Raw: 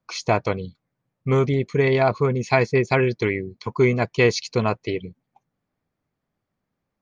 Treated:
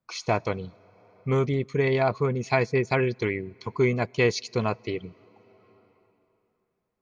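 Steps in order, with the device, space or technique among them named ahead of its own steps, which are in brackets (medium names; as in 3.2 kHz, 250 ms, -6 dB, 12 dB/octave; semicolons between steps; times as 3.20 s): compressed reverb return (on a send at -14 dB: reverberation RT60 2.9 s, pre-delay 68 ms + compression 8:1, threshold -34 dBFS, peak gain reduction 19.5 dB); on the sum: trim -4.5 dB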